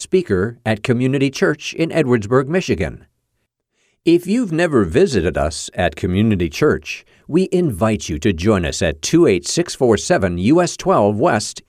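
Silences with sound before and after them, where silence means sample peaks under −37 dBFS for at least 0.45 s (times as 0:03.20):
0:03.03–0:04.06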